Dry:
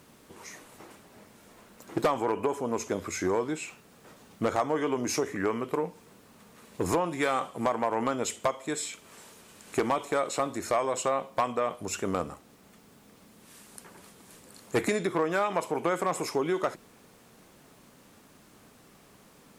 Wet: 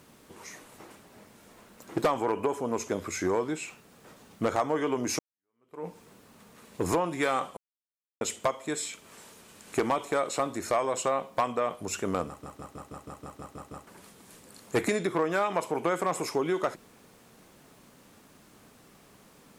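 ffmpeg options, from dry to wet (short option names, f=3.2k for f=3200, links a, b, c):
-filter_complex "[0:a]asplit=14[a][b][c][d][e][f][g][h][i][j][k][l][m][n];[a]atrim=end=5.19,asetpts=PTS-STARTPTS,afade=t=out:st=5.186:d=0.004:c=hsin[o];[b]atrim=start=5.19:end=7.57,asetpts=PTS-STARTPTS,afade=t=in:d=0.68:c=exp,afade=t=out:st=2.376:d=0.004:c=hsin[p];[c]atrim=start=7.57:end=8.21,asetpts=PTS-STARTPTS,volume=0[q];[d]atrim=start=8.21:end=12.432,asetpts=PTS-STARTPTS,afade=t=in:d=0.004:c=hsin[r];[e]atrim=start=12.268:end=12.432[s];[f]atrim=start=12.268:end=12.432[t];[g]atrim=start=12.268:end=12.432[u];[h]atrim=start=12.268:end=12.432[v];[i]atrim=start=12.268:end=12.432[w];[j]atrim=start=12.268:end=12.432[x];[k]atrim=start=12.268:end=12.432[y];[l]atrim=start=12.268:end=12.432[z];[m]atrim=start=12.268:end=12.432[aa];[n]atrim=start=13.868[ab];[o][p][q][r]concat=n=4:v=0:a=1[ac];[ac][s]acrossfade=d=0.004:c1=hsin:c2=hsin[ad];[ad][t]acrossfade=d=0.004:c1=hsin:c2=hsin[ae];[ae][u]acrossfade=d=0.004:c1=hsin:c2=hsin[af];[af][v]acrossfade=d=0.004:c1=hsin:c2=hsin[ag];[ag][w]acrossfade=d=0.004:c1=hsin:c2=hsin[ah];[ah][x]acrossfade=d=0.004:c1=hsin:c2=hsin[ai];[ai][y]acrossfade=d=0.004:c1=hsin:c2=hsin[aj];[aj][z]acrossfade=d=0.004:c1=hsin:c2=hsin[ak];[ak][aa]acrossfade=d=0.004:c1=hsin:c2=hsin[al];[al][ab]acrossfade=d=0.004:c1=hsin:c2=hsin"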